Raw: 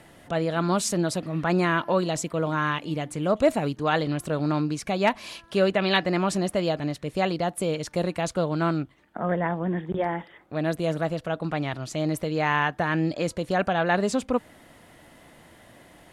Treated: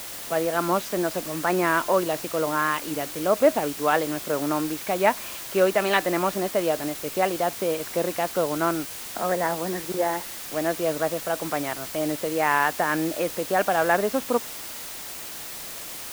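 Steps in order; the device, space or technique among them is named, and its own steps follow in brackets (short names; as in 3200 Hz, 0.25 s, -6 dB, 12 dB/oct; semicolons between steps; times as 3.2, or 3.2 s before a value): wax cylinder (BPF 320–2300 Hz; wow and flutter; white noise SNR 11 dB); gain +3 dB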